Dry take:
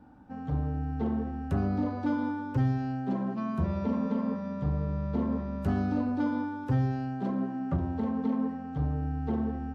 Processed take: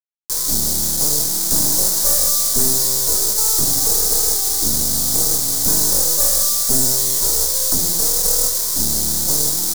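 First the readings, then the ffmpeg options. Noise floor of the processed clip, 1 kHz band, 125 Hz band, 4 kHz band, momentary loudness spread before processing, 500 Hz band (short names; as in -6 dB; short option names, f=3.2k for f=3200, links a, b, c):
-20 dBFS, +3.5 dB, -2.0 dB, n/a, 4 LU, +8.0 dB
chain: -af "equalizer=f=86:w=0.67:g=2.5,aeval=exprs='abs(val(0))':c=same,acrusher=bits=6:mix=0:aa=0.000001,aexciter=amount=13.9:drive=8.9:freq=4.3k,volume=3.5dB"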